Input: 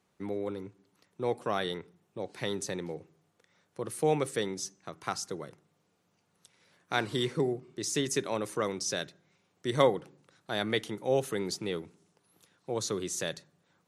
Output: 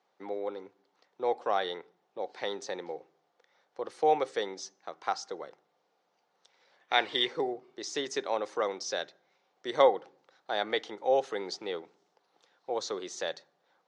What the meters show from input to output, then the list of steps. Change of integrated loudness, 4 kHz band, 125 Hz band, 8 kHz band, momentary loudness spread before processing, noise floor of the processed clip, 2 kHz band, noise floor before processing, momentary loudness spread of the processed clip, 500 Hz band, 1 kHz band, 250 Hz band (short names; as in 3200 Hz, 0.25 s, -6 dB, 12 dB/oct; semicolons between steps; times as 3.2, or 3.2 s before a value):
+0.5 dB, +2.0 dB, -18.5 dB, -7.5 dB, 13 LU, -76 dBFS, +1.0 dB, -74 dBFS, 16 LU, +1.0 dB, +5.0 dB, -7.0 dB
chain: spectral gain 6.81–7.27, 1700–3800 Hz +8 dB; speaker cabinet 430–5500 Hz, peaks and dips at 510 Hz +4 dB, 790 Hz +8 dB, 2600 Hz -4 dB